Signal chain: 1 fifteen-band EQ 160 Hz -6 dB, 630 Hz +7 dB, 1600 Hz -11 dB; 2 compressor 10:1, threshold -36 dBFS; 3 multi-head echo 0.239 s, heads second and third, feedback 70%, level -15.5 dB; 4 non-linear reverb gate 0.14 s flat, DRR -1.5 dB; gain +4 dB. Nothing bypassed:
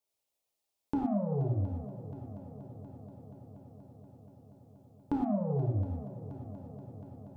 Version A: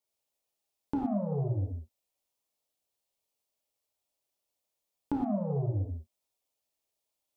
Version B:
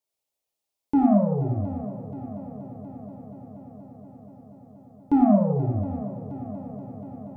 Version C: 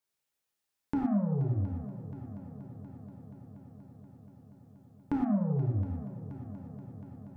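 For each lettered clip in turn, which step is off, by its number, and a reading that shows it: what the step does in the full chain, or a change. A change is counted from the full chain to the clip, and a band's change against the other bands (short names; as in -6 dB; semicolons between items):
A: 3, momentary loudness spread change -13 LU; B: 2, mean gain reduction 7.0 dB; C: 1, crest factor change -2.0 dB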